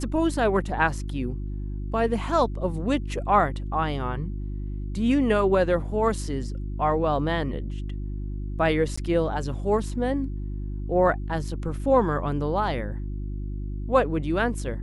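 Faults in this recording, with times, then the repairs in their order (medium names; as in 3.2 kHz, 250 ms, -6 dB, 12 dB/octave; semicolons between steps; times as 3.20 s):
hum 50 Hz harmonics 7 -31 dBFS
8.96–8.97 s: dropout 15 ms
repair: de-hum 50 Hz, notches 7; interpolate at 8.96 s, 15 ms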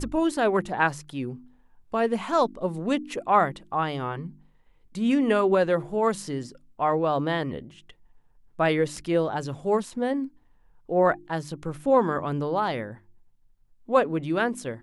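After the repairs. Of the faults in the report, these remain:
nothing left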